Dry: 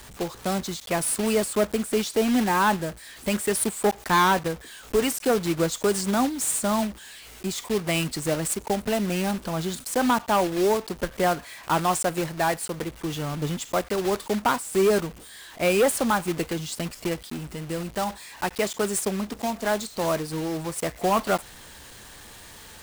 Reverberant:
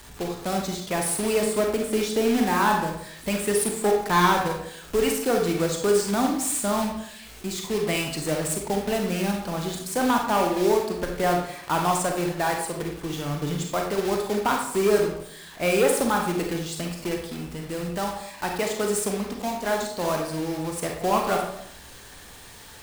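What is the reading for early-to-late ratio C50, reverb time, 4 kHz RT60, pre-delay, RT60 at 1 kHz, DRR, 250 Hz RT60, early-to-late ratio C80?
4.0 dB, 0.75 s, 0.50 s, 34 ms, 0.70 s, 1.5 dB, 0.80 s, 8.0 dB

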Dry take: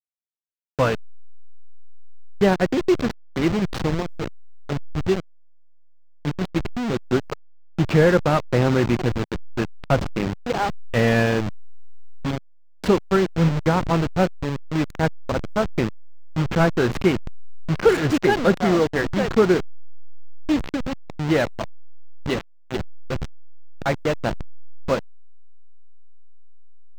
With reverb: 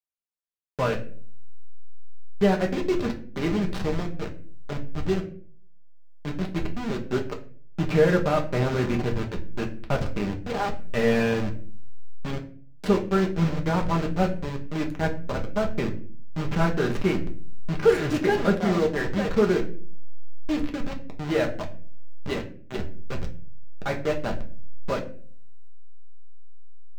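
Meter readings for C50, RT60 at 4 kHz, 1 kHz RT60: 12.5 dB, 0.30 s, 0.35 s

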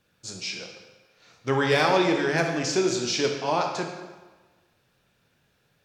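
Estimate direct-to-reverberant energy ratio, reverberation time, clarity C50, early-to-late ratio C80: 2.0 dB, 1.3 s, 4.5 dB, 6.5 dB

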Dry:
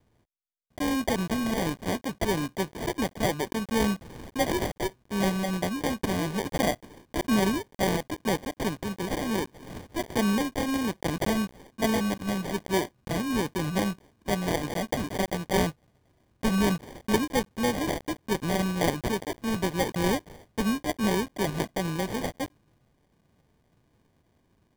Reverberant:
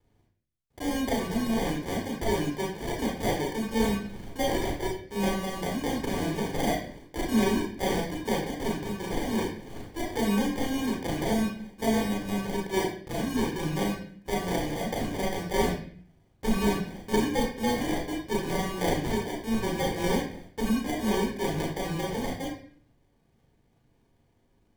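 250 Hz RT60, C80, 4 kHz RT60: 0.70 s, 7.5 dB, 0.50 s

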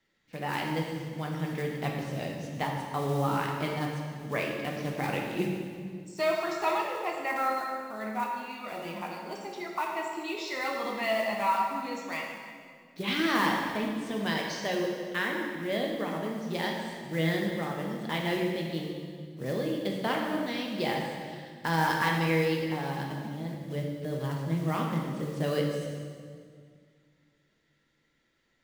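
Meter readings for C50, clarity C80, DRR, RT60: 1.5 dB, 3.0 dB, −1.0 dB, 2.0 s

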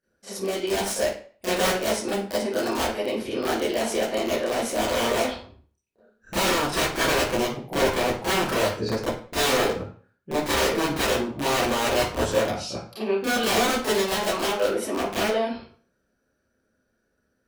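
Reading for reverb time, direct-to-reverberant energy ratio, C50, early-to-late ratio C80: 0.45 s, −12.5 dB, 2.0 dB, 7.0 dB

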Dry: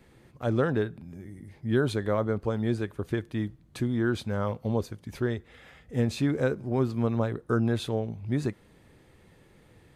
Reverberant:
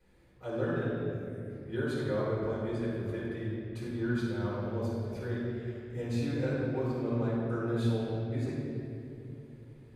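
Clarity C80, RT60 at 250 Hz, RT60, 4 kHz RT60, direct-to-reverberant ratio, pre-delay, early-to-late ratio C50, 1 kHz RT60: 0.0 dB, 3.8 s, 2.8 s, 1.7 s, −8.0 dB, 3 ms, −2.5 dB, 2.1 s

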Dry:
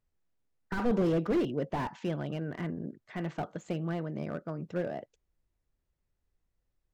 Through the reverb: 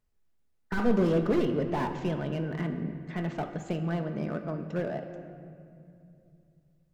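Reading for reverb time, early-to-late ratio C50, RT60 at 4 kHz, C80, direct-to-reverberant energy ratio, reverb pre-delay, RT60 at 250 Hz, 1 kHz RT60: 2.6 s, 8.5 dB, 1.4 s, 9.0 dB, 6.0 dB, 5 ms, 3.5 s, 2.3 s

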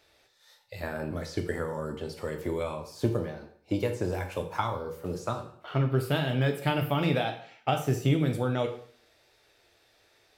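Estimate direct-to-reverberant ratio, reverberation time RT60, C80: 4.0 dB, 0.50 s, 13.5 dB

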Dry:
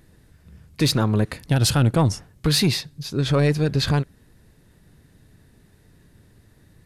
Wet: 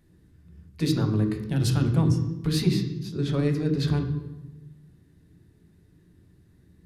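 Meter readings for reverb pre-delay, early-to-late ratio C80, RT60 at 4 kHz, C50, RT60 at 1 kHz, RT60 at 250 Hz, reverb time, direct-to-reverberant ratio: 3 ms, 9.5 dB, 0.80 s, 8.0 dB, 1.0 s, 1.5 s, 1.1 s, 2.5 dB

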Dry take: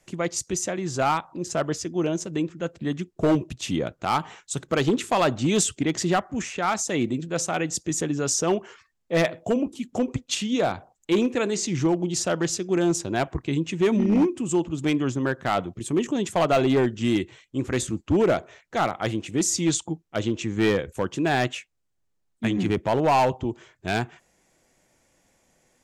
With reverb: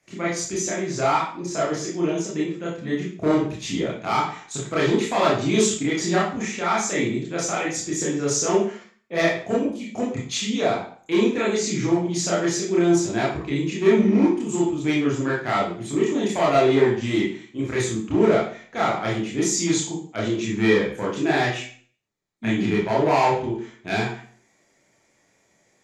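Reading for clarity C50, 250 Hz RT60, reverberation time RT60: 3.0 dB, 0.50 s, 0.45 s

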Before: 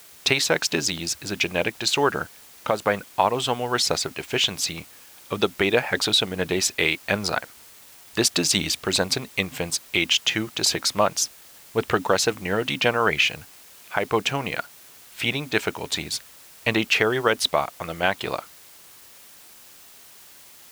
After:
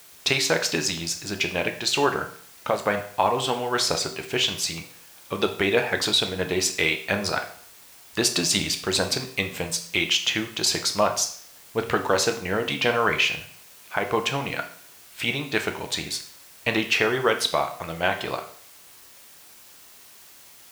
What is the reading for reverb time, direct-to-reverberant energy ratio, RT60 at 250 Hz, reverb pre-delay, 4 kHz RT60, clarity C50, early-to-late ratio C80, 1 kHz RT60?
0.55 s, 5.0 dB, 0.55 s, 8 ms, 0.50 s, 10.5 dB, 14.5 dB, 0.55 s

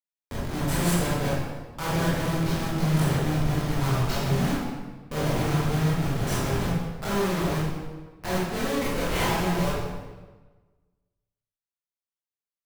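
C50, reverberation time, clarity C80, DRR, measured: −2.5 dB, 1.3 s, 1.0 dB, −9.0 dB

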